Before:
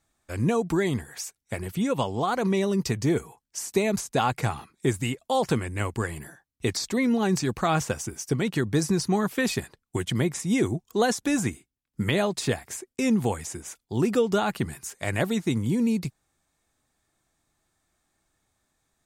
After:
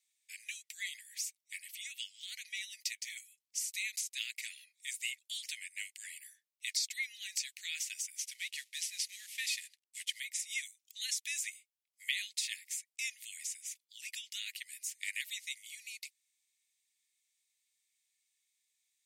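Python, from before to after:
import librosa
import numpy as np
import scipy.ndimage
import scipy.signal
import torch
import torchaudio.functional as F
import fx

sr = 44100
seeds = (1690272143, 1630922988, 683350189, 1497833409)

y = fx.cvsd(x, sr, bps=64000, at=(8.18, 10.2))
y = scipy.signal.sosfilt(scipy.signal.butter(12, 2000.0, 'highpass', fs=sr, output='sos'), y)
y = y * librosa.db_to_amplitude(-3.0)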